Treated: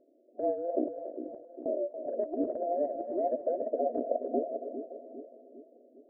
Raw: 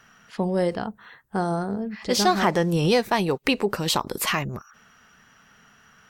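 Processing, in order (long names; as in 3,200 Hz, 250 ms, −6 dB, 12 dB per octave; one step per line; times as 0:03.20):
frequency inversion band by band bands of 1,000 Hz
brick-wall band-pass 230–720 Hz
treble cut that deepens with the level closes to 490 Hz, closed at −21 dBFS
compressor whose output falls as the input rises −30 dBFS, ratio −0.5
0:00.88–0:01.66: gate with flip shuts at −39 dBFS, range −33 dB
on a send: echo with a time of its own for lows and highs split 450 Hz, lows 402 ms, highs 282 ms, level −8 dB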